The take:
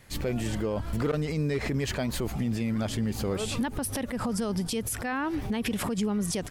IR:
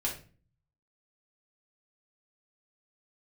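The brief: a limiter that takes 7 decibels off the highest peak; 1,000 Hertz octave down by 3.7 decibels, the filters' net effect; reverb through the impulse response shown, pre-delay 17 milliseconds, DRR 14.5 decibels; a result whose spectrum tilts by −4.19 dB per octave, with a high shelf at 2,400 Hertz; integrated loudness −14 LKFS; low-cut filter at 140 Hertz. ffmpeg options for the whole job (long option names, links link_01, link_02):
-filter_complex "[0:a]highpass=140,equalizer=frequency=1000:width_type=o:gain=-6,highshelf=frequency=2400:gain=5.5,alimiter=limit=-22dB:level=0:latency=1,asplit=2[link_01][link_02];[1:a]atrim=start_sample=2205,adelay=17[link_03];[link_02][link_03]afir=irnorm=-1:irlink=0,volume=-18.5dB[link_04];[link_01][link_04]amix=inputs=2:normalize=0,volume=17.5dB"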